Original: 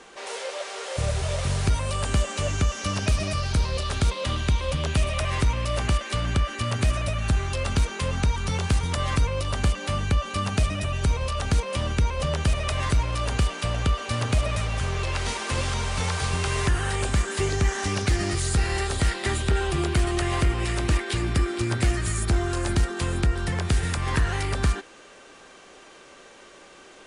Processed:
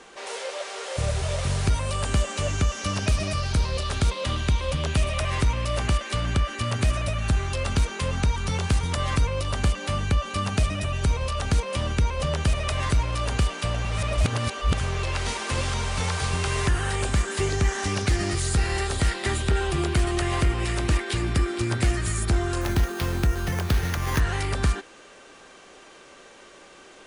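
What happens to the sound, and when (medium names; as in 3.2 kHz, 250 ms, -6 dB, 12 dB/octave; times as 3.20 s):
13.85–14.74 s: reverse
22.61–24.20 s: sample-rate reducer 8 kHz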